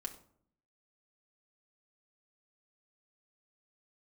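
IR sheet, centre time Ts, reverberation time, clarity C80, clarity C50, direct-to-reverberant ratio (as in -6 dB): 9 ms, 0.60 s, 15.5 dB, 12.0 dB, 1.5 dB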